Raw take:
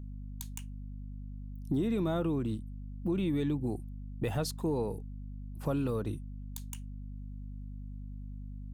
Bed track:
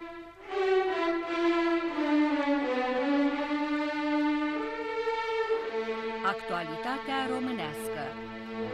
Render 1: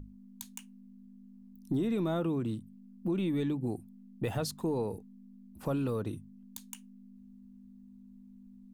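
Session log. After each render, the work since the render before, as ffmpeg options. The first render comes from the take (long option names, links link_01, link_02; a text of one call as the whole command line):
ffmpeg -i in.wav -af "bandreject=frequency=50:width_type=h:width=6,bandreject=frequency=100:width_type=h:width=6,bandreject=frequency=150:width_type=h:width=6" out.wav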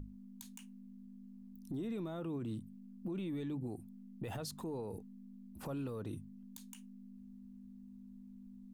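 ffmpeg -i in.wav -af "acompressor=threshold=-33dB:ratio=6,alimiter=level_in=9.5dB:limit=-24dB:level=0:latency=1:release=50,volume=-9.5dB" out.wav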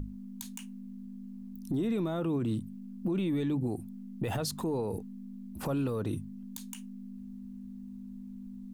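ffmpeg -i in.wav -af "volume=9.5dB" out.wav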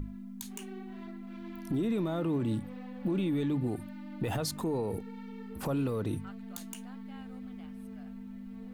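ffmpeg -i in.wav -i bed.wav -filter_complex "[1:a]volume=-22.5dB[link_01];[0:a][link_01]amix=inputs=2:normalize=0" out.wav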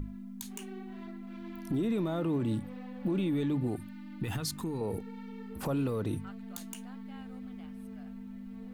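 ffmpeg -i in.wav -filter_complex "[0:a]asettb=1/sr,asplit=3[link_01][link_02][link_03];[link_01]atrim=end=3.774[link_04];[link_02]atrim=start=3.77:end=4.81,asetpts=PTS-STARTPTS,afade=type=in:duration=0.004:curve=qsin,afade=type=out:start_time=1.036:duration=0.004:curve=qsin,equalizer=frequency=590:width_type=o:width=0.92:gain=-14[link_05];[link_03]atrim=start=4.806[link_06];[link_04][link_05]acrossfade=duration=0.004:curve1=hsin:curve2=qsin[link_07];[link_07][link_06]acrossfade=duration=0.004:curve1=qsin:curve2=hsin" out.wav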